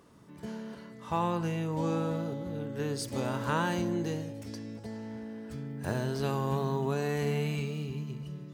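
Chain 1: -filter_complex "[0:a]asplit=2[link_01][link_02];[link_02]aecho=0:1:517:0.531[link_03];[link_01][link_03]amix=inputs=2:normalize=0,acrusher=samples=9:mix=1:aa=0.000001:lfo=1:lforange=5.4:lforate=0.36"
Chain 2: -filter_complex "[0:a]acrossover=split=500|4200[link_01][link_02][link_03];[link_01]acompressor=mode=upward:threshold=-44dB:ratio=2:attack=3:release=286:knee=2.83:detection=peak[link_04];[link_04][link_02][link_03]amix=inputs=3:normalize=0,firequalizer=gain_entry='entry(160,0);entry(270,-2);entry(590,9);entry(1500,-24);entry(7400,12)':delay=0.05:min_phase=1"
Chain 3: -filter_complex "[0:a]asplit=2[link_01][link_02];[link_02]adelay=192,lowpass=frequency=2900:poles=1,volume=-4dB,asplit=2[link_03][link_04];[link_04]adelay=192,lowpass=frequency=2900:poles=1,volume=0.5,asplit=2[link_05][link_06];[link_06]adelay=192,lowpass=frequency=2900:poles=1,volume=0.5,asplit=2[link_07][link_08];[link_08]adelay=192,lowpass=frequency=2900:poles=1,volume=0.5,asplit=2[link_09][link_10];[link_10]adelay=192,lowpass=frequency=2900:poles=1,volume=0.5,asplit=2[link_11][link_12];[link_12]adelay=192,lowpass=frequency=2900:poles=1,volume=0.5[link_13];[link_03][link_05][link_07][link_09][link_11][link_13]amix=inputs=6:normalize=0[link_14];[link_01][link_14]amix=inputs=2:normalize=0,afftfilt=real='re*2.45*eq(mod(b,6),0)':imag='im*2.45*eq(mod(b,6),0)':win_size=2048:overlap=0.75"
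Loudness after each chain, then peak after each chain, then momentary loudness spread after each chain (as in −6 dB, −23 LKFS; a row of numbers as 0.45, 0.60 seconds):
−32.0, −31.5, −33.5 LKFS; −17.0, −15.5, −16.5 dBFS; 11, 12, 21 LU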